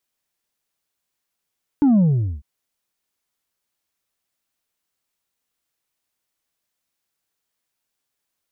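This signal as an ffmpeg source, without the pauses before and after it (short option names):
-f lavfi -i "aevalsrc='0.251*clip((0.6-t)/0.43,0,1)*tanh(1.41*sin(2*PI*300*0.6/log(65/300)*(exp(log(65/300)*t/0.6)-1)))/tanh(1.41)':d=0.6:s=44100"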